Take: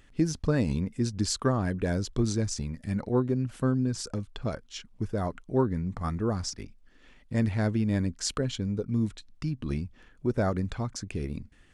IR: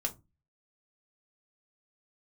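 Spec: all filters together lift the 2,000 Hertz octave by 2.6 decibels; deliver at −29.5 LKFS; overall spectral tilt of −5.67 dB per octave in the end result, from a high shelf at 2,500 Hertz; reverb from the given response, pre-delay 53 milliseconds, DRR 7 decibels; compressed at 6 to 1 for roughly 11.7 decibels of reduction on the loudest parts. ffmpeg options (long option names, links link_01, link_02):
-filter_complex "[0:a]equalizer=frequency=2000:width_type=o:gain=5,highshelf=frequency=2500:gain=-3.5,acompressor=threshold=-33dB:ratio=6,asplit=2[link_01][link_02];[1:a]atrim=start_sample=2205,adelay=53[link_03];[link_02][link_03]afir=irnorm=-1:irlink=0,volume=-9.5dB[link_04];[link_01][link_04]amix=inputs=2:normalize=0,volume=8dB"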